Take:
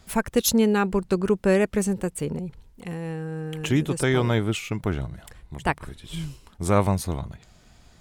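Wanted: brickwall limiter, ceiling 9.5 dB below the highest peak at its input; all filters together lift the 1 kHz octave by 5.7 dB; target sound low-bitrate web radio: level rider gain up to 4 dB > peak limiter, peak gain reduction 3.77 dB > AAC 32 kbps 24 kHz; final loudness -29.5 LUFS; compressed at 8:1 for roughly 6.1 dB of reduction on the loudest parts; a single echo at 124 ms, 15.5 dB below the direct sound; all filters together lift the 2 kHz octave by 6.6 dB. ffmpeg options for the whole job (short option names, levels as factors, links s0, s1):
-af "equalizer=f=1000:t=o:g=5.5,equalizer=f=2000:t=o:g=6.5,acompressor=threshold=0.112:ratio=8,alimiter=limit=0.126:level=0:latency=1,aecho=1:1:124:0.168,dynaudnorm=m=1.58,alimiter=limit=0.0944:level=0:latency=1,volume=1.26" -ar 24000 -c:a aac -b:a 32k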